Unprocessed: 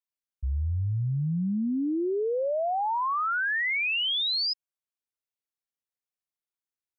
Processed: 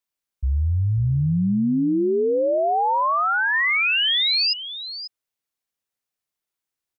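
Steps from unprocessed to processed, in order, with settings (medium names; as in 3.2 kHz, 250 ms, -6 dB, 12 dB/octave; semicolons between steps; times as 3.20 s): 2.58–3.54 s: elliptic band-pass 260–2700 Hz; on a send: delay 541 ms -12.5 dB; on the sum: trim +7 dB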